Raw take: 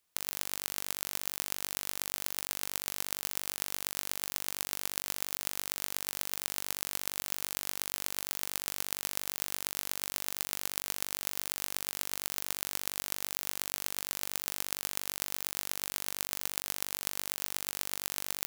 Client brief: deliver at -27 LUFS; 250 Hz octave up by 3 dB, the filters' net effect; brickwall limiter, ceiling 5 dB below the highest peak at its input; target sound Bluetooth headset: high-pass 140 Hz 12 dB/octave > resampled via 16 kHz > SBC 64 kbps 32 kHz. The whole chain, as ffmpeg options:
-af "equalizer=f=250:t=o:g=4.5,alimiter=limit=0.376:level=0:latency=1,highpass=140,aresample=16000,aresample=44100,volume=5.31" -ar 32000 -c:a sbc -b:a 64k

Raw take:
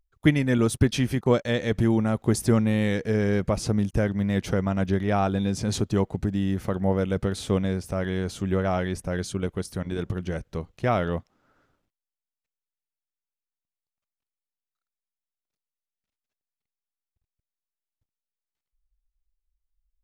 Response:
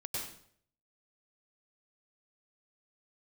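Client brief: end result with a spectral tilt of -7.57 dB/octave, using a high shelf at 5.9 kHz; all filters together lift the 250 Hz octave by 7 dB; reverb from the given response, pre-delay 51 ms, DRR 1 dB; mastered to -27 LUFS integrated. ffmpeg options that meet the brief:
-filter_complex "[0:a]equalizer=f=250:t=o:g=9,highshelf=f=5900:g=7,asplit=2[s0][s1];[1:a]atrim=start_sample=2205,adelay=51[s2];[s1][s2]afir=irnorm=-1:irlink=0,volume=0.75[s3];[s0][s3]amix=inputs=2:normalize=0,volume=0.335"

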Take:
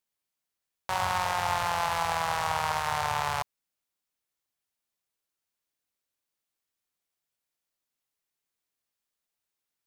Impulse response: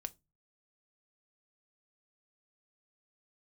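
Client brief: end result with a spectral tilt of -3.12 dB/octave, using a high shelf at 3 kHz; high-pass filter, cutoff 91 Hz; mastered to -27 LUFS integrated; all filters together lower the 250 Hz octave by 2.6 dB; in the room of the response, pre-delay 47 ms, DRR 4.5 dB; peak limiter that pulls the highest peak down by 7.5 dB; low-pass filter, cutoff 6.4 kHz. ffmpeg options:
-filter_complex "[0:a]highpass=91,lowpass=6400,equalizer=f=250:t=o:g=-5,highshelf=f=3000:g=-5,alimiter=limit=0.075:level=0:latency=1,asplit=2[s0][s1];[1:a]atrim=start_sample=2205,adelay=47[s2];[s1][s2]afir=irnorm=-1:irlink=0,volume=0.841[s3];[s0][s3]amix=inputs=2:normalize=0,volume=2"

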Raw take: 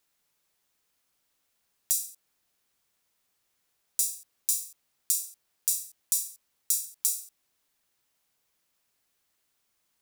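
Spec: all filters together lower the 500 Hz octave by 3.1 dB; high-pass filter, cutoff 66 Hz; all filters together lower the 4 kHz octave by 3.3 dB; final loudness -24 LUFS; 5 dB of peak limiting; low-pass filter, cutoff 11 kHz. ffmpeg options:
-af "highpass=66,lowpass=11000,equalizer=f=500:t=o:g=-4,equalizer=f=4000:t=o:g=-5,volume=3.35,alimiter=limit=0.668:level=0:latency=1"

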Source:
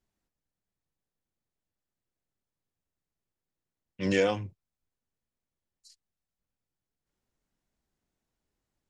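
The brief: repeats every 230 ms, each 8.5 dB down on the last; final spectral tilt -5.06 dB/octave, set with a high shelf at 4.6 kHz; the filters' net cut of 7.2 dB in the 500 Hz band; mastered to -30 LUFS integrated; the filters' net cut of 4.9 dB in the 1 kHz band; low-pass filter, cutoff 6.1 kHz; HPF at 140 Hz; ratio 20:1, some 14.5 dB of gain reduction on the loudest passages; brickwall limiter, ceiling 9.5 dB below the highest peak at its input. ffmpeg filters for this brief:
-af "highpass=140,lowpass=6100,equalizer=f=500:t=o:g=-7,equalizer=f=1000:t=o:g=-3.5,highshelf=f=4600:g=-4.5,acompressor=threshold=0.01:ratio=20,alimiter=level_in=7.08:limit=0.0631:level=0:latency=1,volume=0.141,aecho=1:1:230|460|690|920:0.376|0.143|0.0543|0.0206,volume=16.8"

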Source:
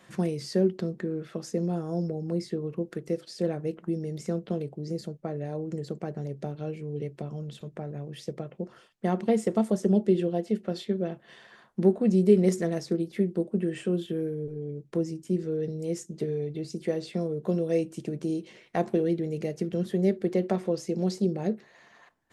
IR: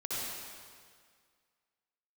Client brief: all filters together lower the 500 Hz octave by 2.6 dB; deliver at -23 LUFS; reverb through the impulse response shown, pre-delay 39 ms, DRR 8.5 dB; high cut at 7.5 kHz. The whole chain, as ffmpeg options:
-filter_complex "[0:a]lowpass=7500,equalizer=f=500:t=o:g=-3.5,asplit=2[s0][s1];[1:a]atrim=start_sample=2205,adelay=39[s2];[s1][s2]afir=irnorm=-1:irlink=0,volume=0.224[s3];[s0][s3]amix=inputs=2:normalize=0,volume=2.24"

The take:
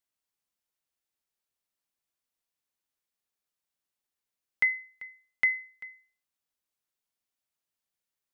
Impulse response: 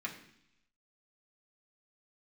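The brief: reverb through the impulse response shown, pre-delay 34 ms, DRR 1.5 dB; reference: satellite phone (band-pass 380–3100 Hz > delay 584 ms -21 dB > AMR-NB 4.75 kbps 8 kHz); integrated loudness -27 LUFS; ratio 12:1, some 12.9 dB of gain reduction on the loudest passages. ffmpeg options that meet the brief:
-filter_complex "[0:a]acompressor=threshold=0.0224:ratio=12,asplit=2[s0][s1];[1:a]atrim=start_sample=2205,adelay=34[s2];[s1][s2]afir=irnorm=-1:irlink=0,volume=0.708[s3];[s0][s3]amix=inputs=2:normalize=0,highpass=380,lowpass=3100,aecho=1:1:584:0.0891,volume=5.31" -ar 8000 -c:a libopencore_amrnb -b:a 4750

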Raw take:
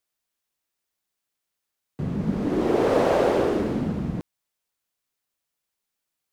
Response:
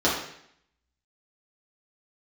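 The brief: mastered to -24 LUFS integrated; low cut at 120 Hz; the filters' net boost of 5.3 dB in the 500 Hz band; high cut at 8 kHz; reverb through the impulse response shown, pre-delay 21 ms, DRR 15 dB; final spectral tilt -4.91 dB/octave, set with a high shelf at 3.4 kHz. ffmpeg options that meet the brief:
-filter_complex "[0:a]highpass=120,lowpass=8000,equalizer=f=500:t=o:g=6.5,highshelf=f=3400:g=-6.5,asplit=2[s0][s1];[1:a]atrim=start_sample=2205,adelay=21[s2];[s1][s2]afir=irnorm=-1:irlink=0,volume=0.0282[s3];[s0][s3]amix=inputs=2:normalize=0,volume=0.596"

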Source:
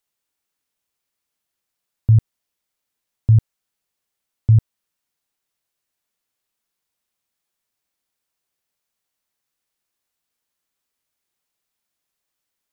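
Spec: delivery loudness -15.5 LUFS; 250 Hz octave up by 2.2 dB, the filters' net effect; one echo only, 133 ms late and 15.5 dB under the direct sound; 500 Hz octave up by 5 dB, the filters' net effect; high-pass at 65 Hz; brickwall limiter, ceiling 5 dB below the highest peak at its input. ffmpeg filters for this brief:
-af "highpass=65,equalizer=f=250:t=o:g=5.5,equalizer=f=500:t=o:g=4.5,alimiter=limit=0.282:level=0:latency=1,aecho=1:1:133:0.168,volume=2.24"

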